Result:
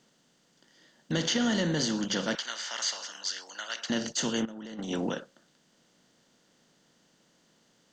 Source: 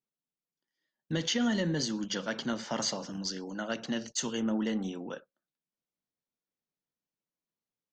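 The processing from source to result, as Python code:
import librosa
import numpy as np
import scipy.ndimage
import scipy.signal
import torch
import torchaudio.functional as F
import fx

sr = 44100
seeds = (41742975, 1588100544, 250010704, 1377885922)

y = fx.bin_compress(x, sr, power=0.6)
y = fx.highpass(y, sr, hz=1300.0, slope=12, at=(2.35, 3.9))
y = fx.over_compress(y, sr, threshold_db=-34.0, ratio=-0.5, at=(4.45, 5.13))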